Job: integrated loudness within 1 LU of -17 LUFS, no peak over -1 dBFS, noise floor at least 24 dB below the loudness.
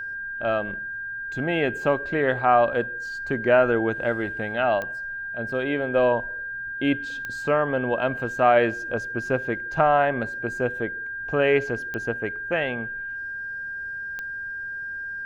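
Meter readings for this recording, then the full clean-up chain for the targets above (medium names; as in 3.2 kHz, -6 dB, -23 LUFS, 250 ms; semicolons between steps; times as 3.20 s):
clicks found 4; steady tone 1.6 kHz; tone level -30 dBFS; loudness -25.0 LUFS; peak level -6.5 dBFS; loudness target -17.0 LUFS
-> de-click; band-stop 1.6 kHz, Q 30; trim +8 dB; peak limiter -1 dBFS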